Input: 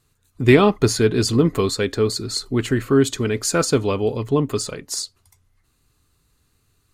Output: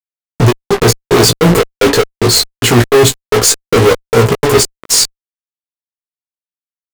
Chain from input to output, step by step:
parametric band 460 Hz +14 dB 0.31 octaves
brickwall limiter −5.5 dBFS, peak gain reduction 9 dB
flanger 0.52 Hz, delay 3.4 ms, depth 5.5 ms, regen +78%
gate pattern "x..xx..xx..xx.x" 149 BPM −60 dB
fuzz pedal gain 43 dB, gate −39 dBFS
double-tracking delay 17 ms −4 dB
level +5.5 dB

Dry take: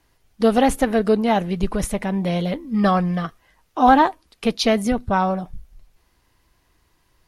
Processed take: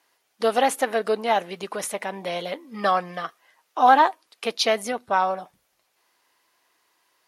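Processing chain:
high-pass filter 530 Hz 12 dB per octave

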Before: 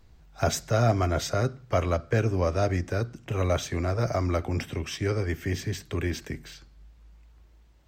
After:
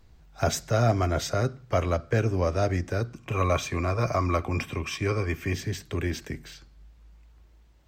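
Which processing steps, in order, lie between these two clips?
0:03.13–0:05.54: hollow resonant body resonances 1,100/2,400 Hz, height 14 dB, ringing for 35 ms

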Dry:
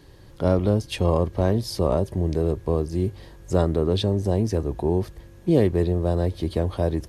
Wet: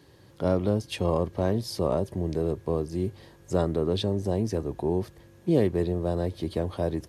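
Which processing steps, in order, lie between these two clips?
high-pass filter 100 Hz 12 dB per octave
level −3.5 dB

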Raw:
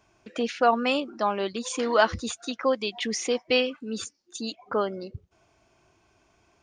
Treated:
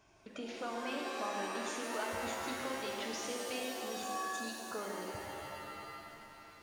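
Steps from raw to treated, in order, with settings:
downward compressor 2 to 1, threshold −50 dBFS, peak gain reduction 18.5 dB
reverb with rising layers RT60 2.8 s, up +7 semitones, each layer −2 dB, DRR −0.5 dB
level −3 dB

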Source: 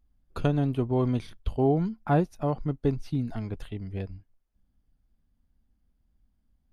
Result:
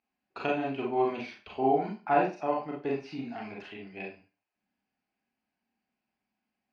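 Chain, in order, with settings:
loudspeaker in its box 440–4,800 Hz, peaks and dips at 510 Hz −9 dB, 760 Hz +3 dB, 1,200 Hz −5 dB, 2,500 Hz +9 dB, 3,500 Hz −10 dB
four-comb reverb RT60 0.31 s, combs from 30 ms, DRR −2.5 dB

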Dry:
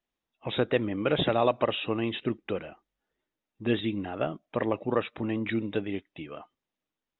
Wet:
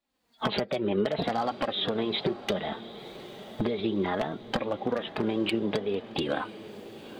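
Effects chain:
camcorder AGC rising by 50 dB per second
high-pass filter 190 Hz 6 dB per octave
low-shelf EQ 240 Hz +9 dB
downward compressor 4 to 1, threshold −25 dBFS, peak gain reduction 10 dB
wave folding −18 dBFS
formants moved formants +4 semitones
flanger 0.64 Hz, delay 3.5 ms, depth 1.9 ms, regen +30%
feedback delay with all-pass diffusion 906 ms, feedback 55%, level −15 dB
level +4.5 dB

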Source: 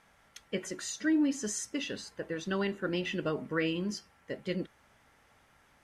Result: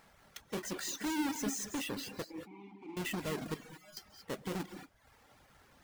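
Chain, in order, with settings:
each half-wave held at its own peak
brickwall limiter −29.5 dBFS, peak gain reduction 11.5 dB
0:02.24–0:02.97: formant filter u
0:03.54–0:03.97: stiff-string resonator 150 Hz, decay 0.58 s, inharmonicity 0.002
reverb whose tail is shaped and stops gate 250 ms rising, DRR 5 dB
reverb reduction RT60 0.72 s
level −2.5 dB

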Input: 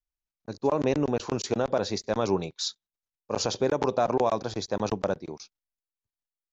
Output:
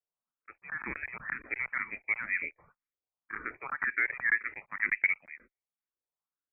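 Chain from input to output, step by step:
auto-filter high-pass saw down 0.34 Hz 500–1,800 Hz
voice inversion scrambler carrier 2,800 Hz
frequency shifter mixed with the dry sound +2 Hz

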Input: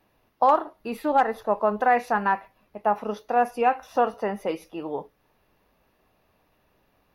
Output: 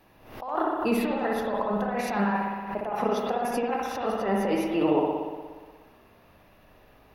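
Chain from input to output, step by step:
compressor whose output falls as the input rises −30 dBFS, ratio −1
convolution reverb RT60 1.5 s, pre-delay 59 ms, DRR −1 dB
background raised ahead of every attack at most 86 dB per second

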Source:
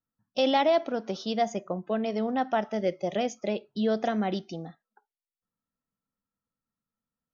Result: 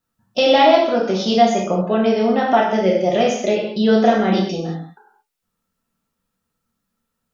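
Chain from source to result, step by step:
in parallel at −2 dB: downward compressor, threshold −31 dBFS, peak gain reduction 11.5 dB
on the sum: convolution reverb, pre-delay 3 ms, DRR −3.5 dB
level +5 dB

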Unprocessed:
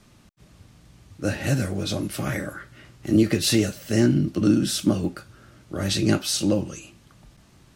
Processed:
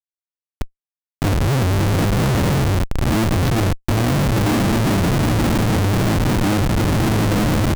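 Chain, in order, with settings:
spectral tilt −3.5 dB per octave
on a send: feedback delay with all-pass diffusion 915 ms, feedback 55%, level −9 dB
on the sum: automatic gain control gain up to 8 dB
noise reduction from a noise print of the clip's start 7 dB
comparator with hysteresis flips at −23 dBFS

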